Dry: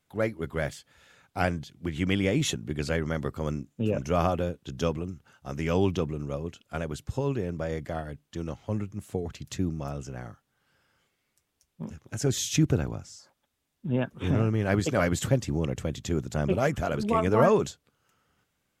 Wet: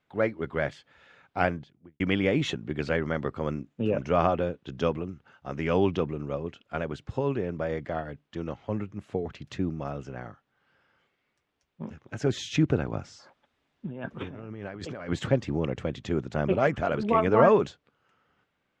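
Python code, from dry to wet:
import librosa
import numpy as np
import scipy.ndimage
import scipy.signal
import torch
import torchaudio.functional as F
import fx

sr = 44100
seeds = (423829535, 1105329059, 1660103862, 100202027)

y = fx.studio_fade_out(x, sr, start_s=1.39, length_s=0.61)
y = fx.over_compress(y, sr, threshold_db=-35.0, ratio=-1.0, at=(12.92, 15.08), fade=0.02)
y = scipy.signal.sosfilt(scipy.signal.butter(2, 2900.0, 'lowpass', fs=sr, output='sos'), y)
y = fx.low_shelf(y, sr, hz=150.0, db=-9.5)
y = y * 10.0 ** (3.0 / 20.0)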